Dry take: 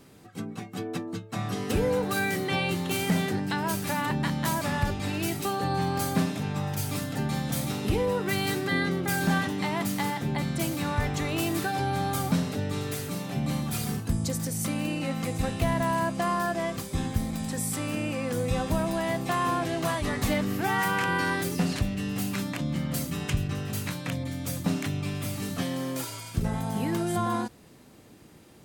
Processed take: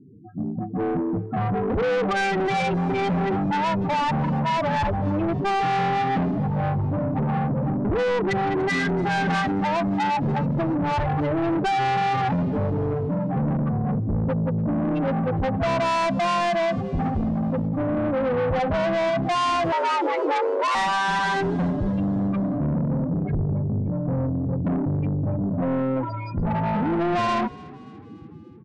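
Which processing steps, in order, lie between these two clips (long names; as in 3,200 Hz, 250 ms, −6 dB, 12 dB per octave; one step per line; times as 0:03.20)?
running median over 5 samples
dynamic equaliser 760 Hz, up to +7 dB, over −43 dBFS, Q 0.96
automatic gain control gain up to 6 dB
in parallel at +2.5 dB: brickwall limiter −14.5 dBFS, peak gain reduction 8 dB
on the sum: spectral peaks only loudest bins 8
soft clipping −20.5 dBFS, distortion −8 dB
downsampling to 22,050 Hz
on a send: echo with shifted repeats 289 ms, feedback 53%, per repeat +36 Hz, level −22 dB
0:19.72–0:20.75: on the sum: frequency shifter +260 Hz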